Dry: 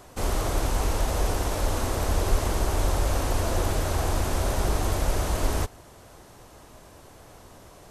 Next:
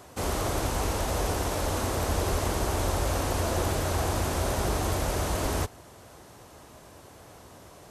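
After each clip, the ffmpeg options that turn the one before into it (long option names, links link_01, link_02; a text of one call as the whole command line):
ffmpeg -i in.wav -af "highpass=62" out.wav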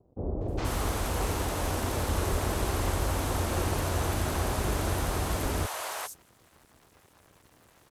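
ffmpeg -i in.wav -filter_complex "[0:a]aeval=exprs='sgn(val(0))*max(abs(val(0))-0.00376,0)':channel_layout=same,acrossover=split=610|5800[link_01][link_02][link_03];[link_02]adelay=410[link_04];[link_03]adelay=480[link_05];[link_01][link_04][link_05]amix=inputs=3:normalize=0" out.wav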